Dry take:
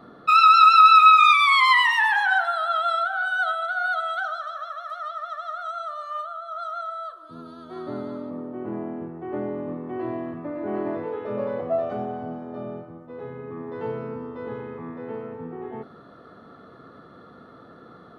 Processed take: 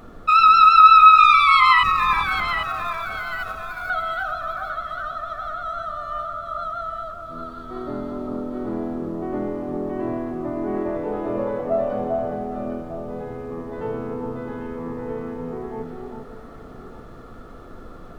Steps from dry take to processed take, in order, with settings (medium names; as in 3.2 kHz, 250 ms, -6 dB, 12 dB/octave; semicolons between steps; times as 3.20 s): 1.83–3.90 s: median filter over 41 samples; treble shelf 3.6 kHz -6.5 dB; added noise brown -46 dBFS; echo whose repeats swap between lows and highs 399 ms, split 1.2 kHz, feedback 57%, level -3 dB; trim +2 dB